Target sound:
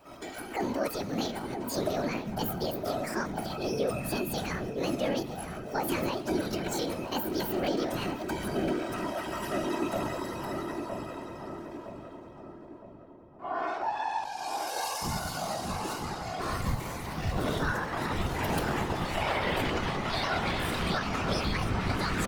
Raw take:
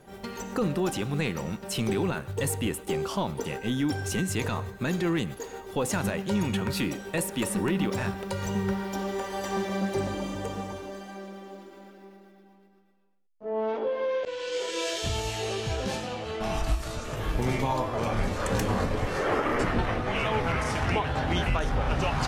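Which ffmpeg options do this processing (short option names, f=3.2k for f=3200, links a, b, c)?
-filter_complex "[0:a]asetrate=72056,aresample=44100,atempo=0.612027,afftfilt=real='hypot(re,im)*cos(2*PI*random(0))':imag='hypot(re,im)*sin(2*PI*random(1))':win_size=512:overlap=0.75,asplit=2[a][b];[b]adelay=963,lowpass=f=1k:p=1,volume=-5dB,asplit=2[c][d];[d]adelay=963,lowpass=f=1k:p=1,volume=0.54,asplit=2[e][f];[f]adelay=963,lowpass=f=1k:p=1,volume=0.54,asplit=2[g][h];[h]adelay=963,lowpass=f=1k:p=1,volume=0.54,asplit=2[i][j];[j]adelay=963,lowpass=f=1k:p=1,volume=0.54,asplit=2[k][l];[l]adelay=963,lowpass=f=1k:p=1,volume=0.54,asplit=2[m][n];[n]adelay=963,lowpass=f=1k:p=1,volume=0.54[o];[a][c][e][g][i][k][m][o]amix=inputs=8:normalize=0,volume=2.5dB"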